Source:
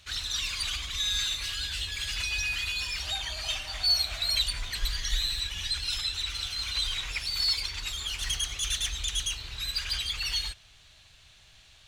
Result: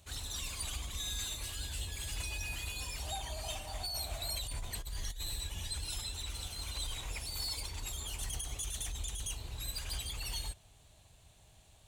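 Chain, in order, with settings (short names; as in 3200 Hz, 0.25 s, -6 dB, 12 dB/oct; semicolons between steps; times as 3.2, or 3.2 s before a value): HPF 43 Hz 6 dB/oct; band shelf 2700 Hz -14 dB 2.6 oct; negative-ratio compressor -38 dBFS, ratio -1; gain +1 dB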